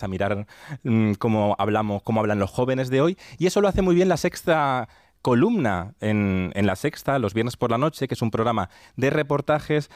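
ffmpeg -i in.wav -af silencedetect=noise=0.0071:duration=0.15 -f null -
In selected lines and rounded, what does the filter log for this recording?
silence_start: 4.93
silence_end: 5.25 | silence_duration: 0.32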